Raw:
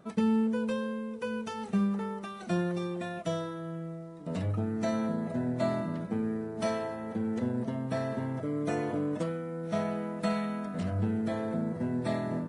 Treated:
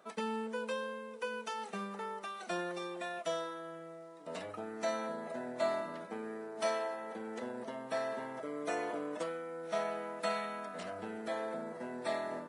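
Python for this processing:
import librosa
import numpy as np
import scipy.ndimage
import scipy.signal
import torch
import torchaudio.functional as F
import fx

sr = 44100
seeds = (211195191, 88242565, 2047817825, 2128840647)

y = scipy.signal.sosfilt(scipy.signal.butter(2, 540.0, 'highpass', fs=sr, output='sos'), x)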